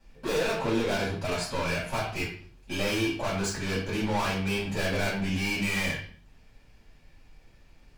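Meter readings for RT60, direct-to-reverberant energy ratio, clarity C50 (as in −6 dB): 0.45 s, −9.5 dB, 5.0 dB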